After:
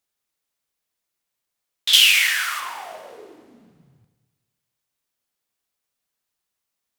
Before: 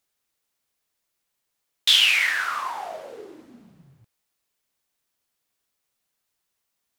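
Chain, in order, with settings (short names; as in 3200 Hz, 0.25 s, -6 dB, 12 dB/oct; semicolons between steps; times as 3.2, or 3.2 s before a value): 1.93–2.6 tilt +4.5 dB/oct; Schroeder reverb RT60 1.4 s, combs from 31 ms, DRR 8 dB; gain -3.5 dB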